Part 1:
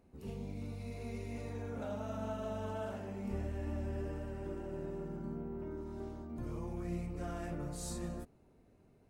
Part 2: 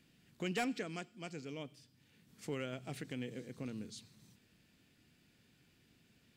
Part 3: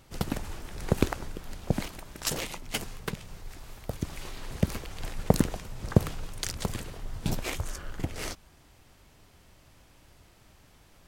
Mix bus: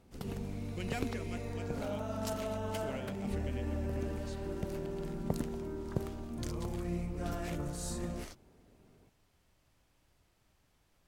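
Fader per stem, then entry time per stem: +2.5, −3.5, −14.0 decibels; 0.00, 0.35, 0.00 seconds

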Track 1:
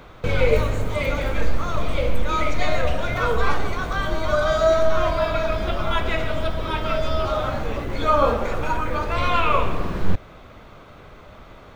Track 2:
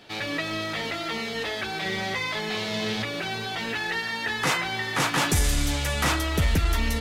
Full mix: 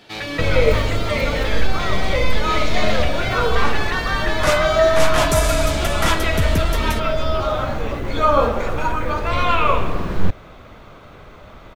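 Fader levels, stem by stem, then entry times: +2.5, +2.5 decibels; 0.15, 0.00 seconds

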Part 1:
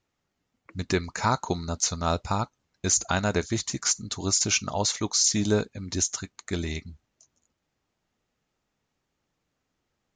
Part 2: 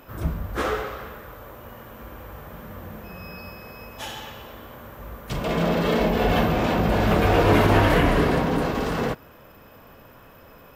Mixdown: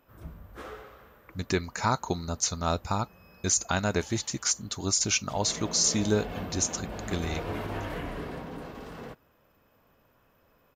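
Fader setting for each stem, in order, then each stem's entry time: −2.0, −17.0 decibels; 0.60, 0.00 seconds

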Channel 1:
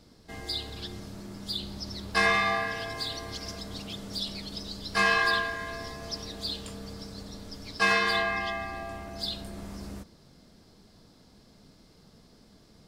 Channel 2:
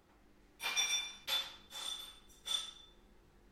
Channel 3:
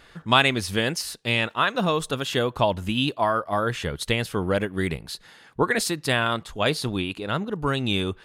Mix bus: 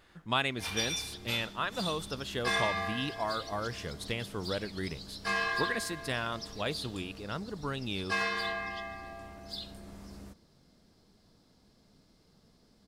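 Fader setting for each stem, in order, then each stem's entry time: −7.5, −0.5, −11.5 decibels; 0.30, 0.00, 0.00 seconds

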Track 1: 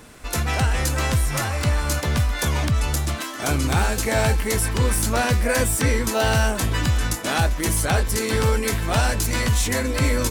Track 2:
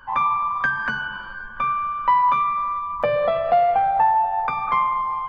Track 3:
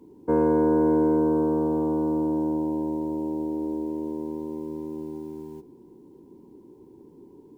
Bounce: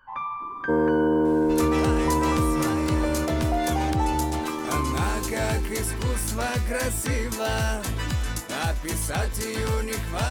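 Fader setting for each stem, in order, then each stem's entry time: −6.0, −11.0, −0.5 decibels; 1.25, 0.00, 0.40 seconds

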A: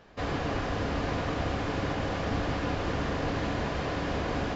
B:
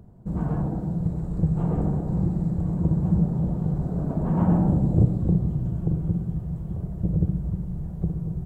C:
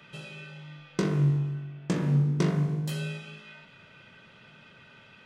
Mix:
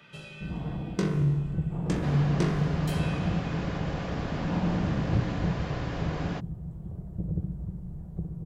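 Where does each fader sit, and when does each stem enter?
−4.5, −8.0, −1.5 decibels; 1.85, 0.15, 0.00 seconds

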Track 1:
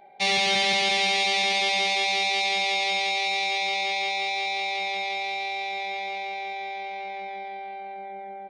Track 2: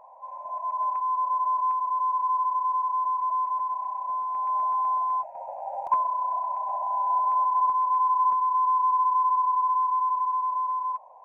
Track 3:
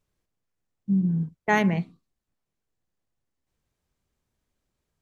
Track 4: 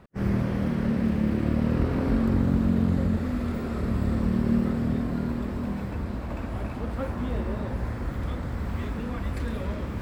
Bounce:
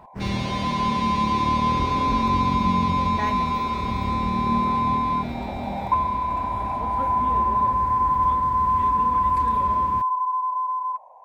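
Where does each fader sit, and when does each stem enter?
−12.0, +2.0, −9.5, −2.0 decibels; 0.00, 0.00, 1.70, 0.00 seconds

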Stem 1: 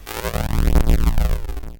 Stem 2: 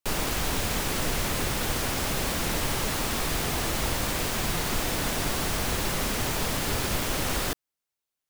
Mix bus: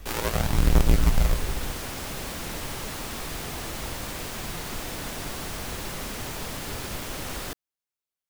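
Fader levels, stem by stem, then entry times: −3.5, −6.0 decibels; 0.00, 0.00 seconds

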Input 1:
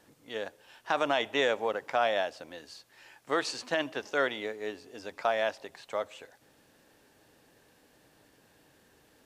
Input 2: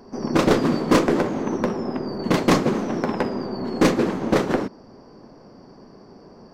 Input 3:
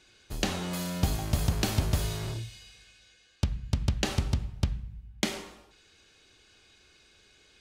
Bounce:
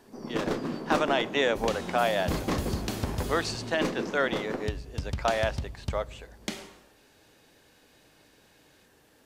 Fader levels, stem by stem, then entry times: +1.5, −12.5, −5.5 decibels; 0.00, 0.00, 1.25 seconds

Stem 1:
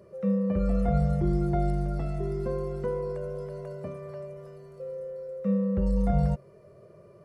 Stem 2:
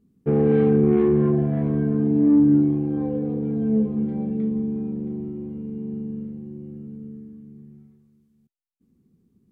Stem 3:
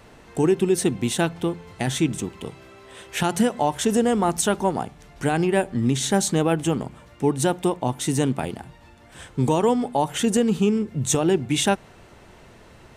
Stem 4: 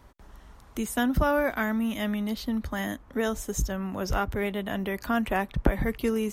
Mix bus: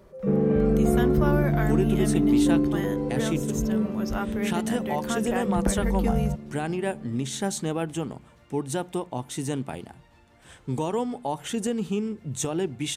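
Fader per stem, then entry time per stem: −1.5, −5.0, −7.5, −4.0 decibels; 0.00, 0.00, 1.30, 0.00 seconds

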